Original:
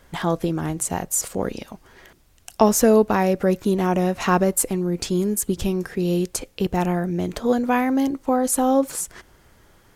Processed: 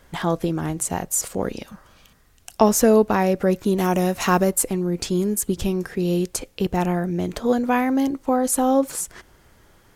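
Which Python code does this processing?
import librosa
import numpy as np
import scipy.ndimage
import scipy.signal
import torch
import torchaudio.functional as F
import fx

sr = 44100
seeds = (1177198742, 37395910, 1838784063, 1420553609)

y = fx.spec_repair(x, sr, seeds[0], start_s=1.72, length_s=0.64, low_hz=250.0, high_hz=2200.0, source='both')
y = fx.high_shelf(y, sr, hz=fx.line((3.77, 4500.0), (4.49, 8000.0)), db=12.0, at=(3.77, 4.49), fade=0.02)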